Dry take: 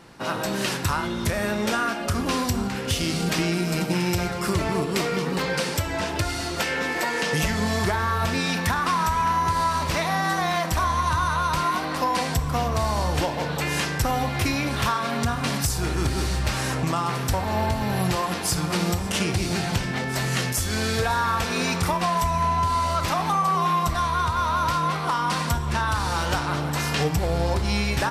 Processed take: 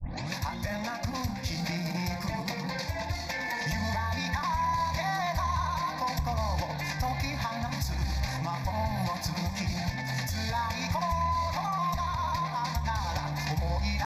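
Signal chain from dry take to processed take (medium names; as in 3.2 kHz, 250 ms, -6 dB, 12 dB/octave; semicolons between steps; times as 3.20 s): tape start-up on the opening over 0.69 s; tempo 2×; static phaser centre 2 kHz, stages 8; trim -4 dB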